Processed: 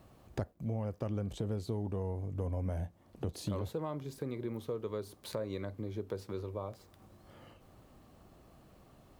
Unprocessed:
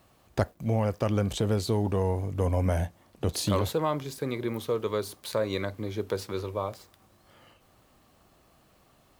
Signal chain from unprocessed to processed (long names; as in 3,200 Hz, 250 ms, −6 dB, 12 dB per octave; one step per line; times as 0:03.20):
tilt shelving filter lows +5 dB, about 810 Hz
downward compressor 2 to 1, threshold −44 dBFS, peak gain reduction 15 dB